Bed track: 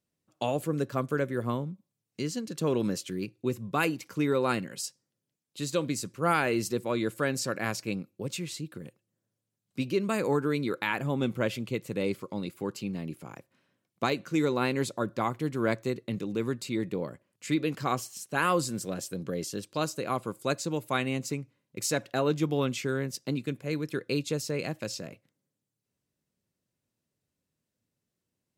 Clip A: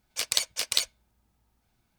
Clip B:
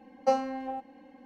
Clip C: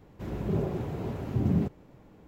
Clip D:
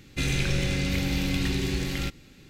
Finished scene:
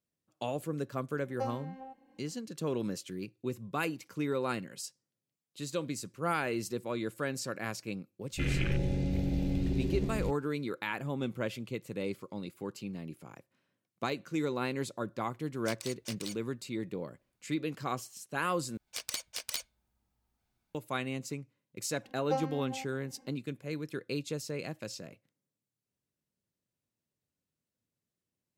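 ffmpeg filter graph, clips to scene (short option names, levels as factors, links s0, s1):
-filter_complex "[2:a]asplit=2[s0][s1];[1:a]asplit=2[s2][s3];[0:a]volume=0.501[s4];[4:a]afwtdn=0.0355[s5];[s2]alimiter=limit=0.251:level=0:latency=1:release=47[s6];[s3]aeval=exprs='(mod(3.55*val(0)+1,2)-1)/3.55':c=same[s7];[s4]asplit=2[s8][s9];[s8]atrim=end=18.774[s10];[s7]atrim=end=1.98,asetpts=PTS-STARTPTS,volume=0.355[s11];[s9]atrim=start=20.746[s12];[s0]atrim=end=1.25,asetpts=PTS-STARTPTS,volume=0.266,afade=t=in:d=0.004:c=hsin,afade=t=out:st=1.246:d=0.004:c=hsin,adelay=1130[s13];[s5]atrim=end=2.49,asetpts=PTS-STARTPTS,volume=0.668,afade=t=in:d=0.004:c=hsin,afade=t=out:st=2.486:d=0.004:c=hsin,adelay=8210[s14];[s6]atrim=end=1.98,asetpts=PTS-STARTPTS,volume=0.251,afade=t=in:d=0.004:c=hsin,afade=t=out:st=1.976:d=0.004:c=hsin,adelay=15490[s15];[s1]atrim=end=1.25,asetpts=PTS-STARTPTS,volume=0.422,afade=t=in:d=0.004:c=hsin,afade=t=out:st=1.246:d=0.004:c=hsin,adelay=22040[s16];[s10][s11]acrossfade=d=0.004:c1=hsin:c2=hsin[s17];[s17][s12]acrossfade=d=0.004:c1=hsin:c2=hsin[s18];[s18][s13][s14][s15][s16]amix=inputs=5:normalize=0"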